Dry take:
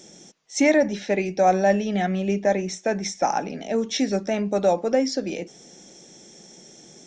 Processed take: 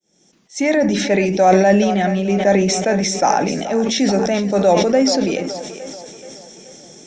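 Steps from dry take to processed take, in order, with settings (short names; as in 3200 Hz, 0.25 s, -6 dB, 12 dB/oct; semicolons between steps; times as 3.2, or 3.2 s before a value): opening faded in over 1.13 s; split-band echo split 350 Hz, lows 0.147 s, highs 0.43 s, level -13 dB; sustainer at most 30 dB/s; gain +5 dB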